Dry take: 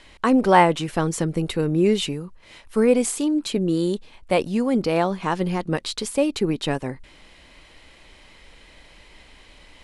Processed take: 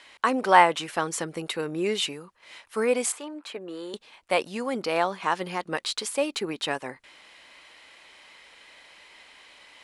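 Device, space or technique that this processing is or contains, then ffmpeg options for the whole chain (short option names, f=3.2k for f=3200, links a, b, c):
filter by subtraction: -filter_complex "[0:a]asettb=1/sr,asplit=3[a][b][c];[a]atrim=end=3.124[d];[b]atrim=start=3.12:end=3.94,asetpts=PTS-STARTPTS,afade=t=in:d=0.004:c=qsin,afade=t=out:st=0.816:d=0.004:c=qsin,acrossover=split=420 2400:gain=0.224 1 0.2[e][f][g];[e][f][g]amix=inputs=3:normalize=0[h];[c]atrim=start=3.936[i];[d][h]acrossfade=d=0.004:c1=hsin:c2=qsin[j];[j][i]acrossfade=d=0.004:c1=qsin:c2=hsin,asplit=2[k][l];[l]lowpass=1.2k,volume=-1[m];[k][m]amix=inputs=2:normalize=0,volume=-1dB"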